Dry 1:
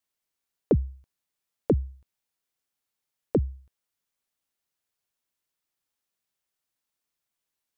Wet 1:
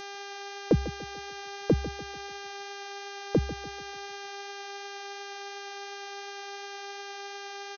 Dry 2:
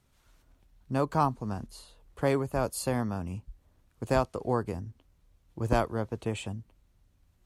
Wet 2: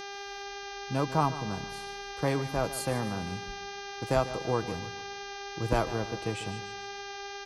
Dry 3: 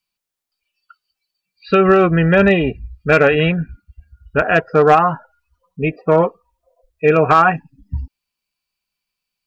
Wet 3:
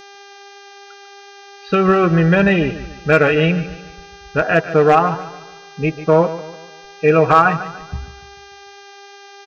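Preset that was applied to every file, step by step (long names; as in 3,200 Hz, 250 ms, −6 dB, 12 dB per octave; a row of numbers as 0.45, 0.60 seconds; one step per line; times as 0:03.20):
hum with harmonics 400 Hz, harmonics 16, −39 dBFS −4 dB per octave
comb filter 6.2 ms, depth 33%
feedback echo with a swinging delay time 146 ms, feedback 42%, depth 52 cents, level −14 dB
level −1.5 dB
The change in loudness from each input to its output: −6.5, −2.0, −0.5 LU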